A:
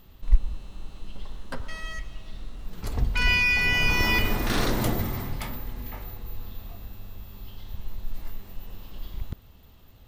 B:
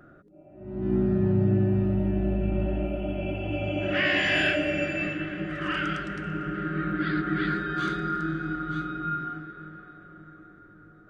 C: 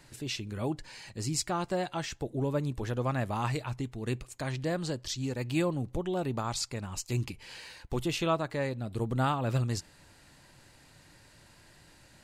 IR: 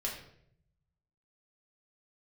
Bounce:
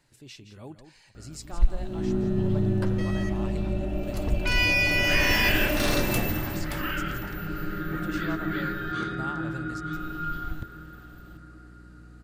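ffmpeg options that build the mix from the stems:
-filter_complex "[0:a]adynamicequalizer=threshold=0.0126:dfrequency=3700:dqfactor=0.7:tfrequency=3700:tqfactor=0.7:attack=5:release=100:ratio=0.375:range=2.5:mode=boostabove:tftype=highshelf,adelay=1300,volume=-2dB,asplit=3[link_01][link_02][link_03];[link_01]atrim=end=8.92,asetpts=PTS-STARTPTS,afade=type=out:start_time=8.916:duration=0.004:curve=hsin[link_04];[link_02]atrim=start=8.92:end=9.93,asetpts=PTS-STARTPTS,volume=0[link_05];[link_03]atrim=start=9.93,asetpts=PTS-STARTPTS,afade=type=in:duration=0.004:curve=hsin[link_06];[link_04][link_05][link_06]concat=n=3:v=0:a=1[link_07];[1:a]aeval=exprs='val(0)+0.00562*(sin(2*PI*60*n/s)+sin(2*PI*2*60*n/s)/2+sin(2*PI*3*60*n/s)/3+sin(2*PI*4*60*n/s)/4+sin(2*PI*5*60*n/s)/5)':channel_layout=same,adelay=1150,volume=-2.5dB[link_08];[2:a]volume=-10.5dB,asplit=2[link_09][link_10];[link_10]volume=-10.5dB,aecho=0:1:169:1[link_11];[link_07][link_08][link_09][link_11]amix=inputs=4:normalize=0"

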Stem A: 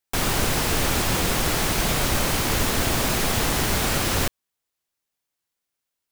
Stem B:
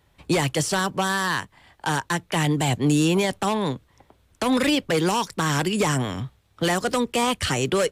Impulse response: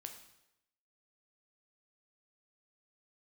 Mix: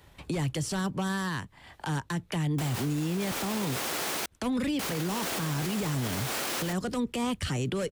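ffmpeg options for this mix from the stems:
-filter_complex "[0:a]highpass=310,adelay=2450,volume=-1.5dB,asplit=3[link_01][link_02][link_03];[link_01]atrim=end=4.26,asetpts=PTS-STARTPTS,afade=type=out:start_time=4.256:duration=0.004:curve=hsin[link_04];[link_02]atrim=start=4.26:end=4.79,asetpts=PTS-STARTPTS,volume=0[link_05];[link_03]atrim=start=4.79,asetpts=PTS-STARTPTS,afade=type=in:duration=0.004:curve=hsin[link_06];[link_04][link_05][link_06]concat=n=3:v=0:a=1[link_07];[1:a]agate=range=-33dB:threshold=-54dB:ratio=3:detection=peak,acrossover=split=280[link_08][link_09];[link_09]acompressor=threshold=-36dB:ratio=3[link_10];[link_08][link_10]amix=inputs=2:normalize=0,volume=1dB,asplit=2[link_11][link_12];[link_12]apad=whole_len=377561[link_13];[link_07][link_13]sidechaincompress=threshold=-32dB:ratio=3:attack=41:release=579[link_14];[link_14][link_11]amix=inputs=2:normalize=0,acompressor=mode=upward:threshold=-43dB:ratio=2.5,alimiter=limit=-22.5dB:level=0:latency=1:release=22"

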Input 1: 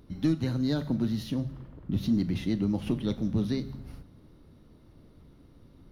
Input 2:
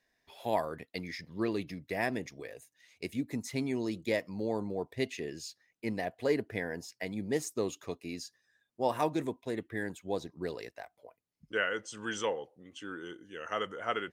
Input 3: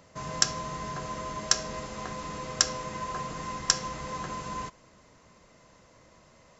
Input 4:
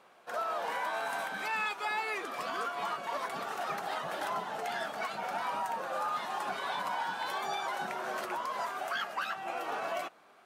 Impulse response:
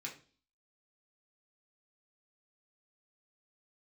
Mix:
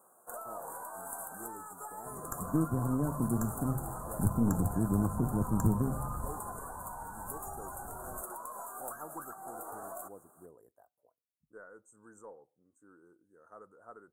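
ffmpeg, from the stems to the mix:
-filter_complex "[0:a]asubboost=boost=3:cutoff=170,adelay=2300,volume=-0.5dB[link_01];[1:a]aexciter=amount=3.2:drive=3.5:freq=4800,volume=-14dB,asplit=2[link_02][link_03];[link_03]volume=-21.5dB[link_04];[2:a]adelay=1900,volume=-7dB[link_05];[3:a]acompressor=threshold=-36dB:ratio=6,aexciter=amount=8.1:drive=2.7:freq=4400,volume=-1dB[link_06];[4:a]atrim=start_sample=2205[link_07];[link_04][link_07]afir=irnorm=-1:irlink=0[link_08];[link_01][link_02][link_05][link_06][link_08]amix=inputs=5:normalize=0,aeval=exprs='(tanh(5.62*val(0)+0.65)-tanh(0.65))/5.62':channel_layout=same,asuperstop=centerf=3400:order=12:qfactor=0.55"

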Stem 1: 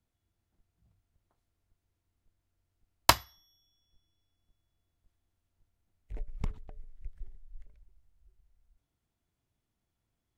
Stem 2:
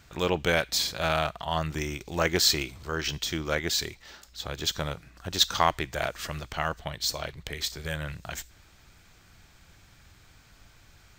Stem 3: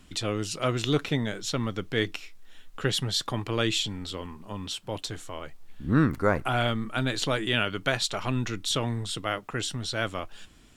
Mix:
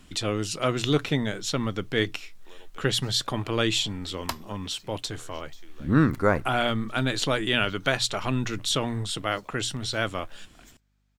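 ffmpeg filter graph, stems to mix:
ffmpeg -i stem1.wav -i stem2.wav -i stem3.wav -filter_complex "[0:a]aeval=exprs='val(0)+0.00112*(sin(2*PI*50*n/s)+sin(2*PI*2*50*n/s)/2+sin(2*PI*3*50*n/s)/3+sin(2*PI*4*50*n/s)/4+sin(2*PI*5*50*n/s)/5)':channel_layout=same,adelay=1200,volume=-10.5dB[link_01];[1:a]highpass=frequency=270:width=0.5412,highpass=frequency=270:width=1.3066,agate=range=-7dB:threshold=-47dB:ratio=16:detection=peak,acompressor=threshold=-32dB:ratio=6,adelay=2300,volume=-17dB[link_02];[2:a]bandreject=frequency=60:width_type=h:width=6,bandreject=frequency=120:width_type=h:width=6,volume=2dB,asplit=2[link_03][link_04];[link_04]apad=whole_len=594605[link_05];[link_02][link_05]sidechaincompress=threshold=-28dB:ratio=8:attack=8.1:release=150[link_06];[link_01][link_06][link_03]amix=inputs=3:normalize=0" out.wav

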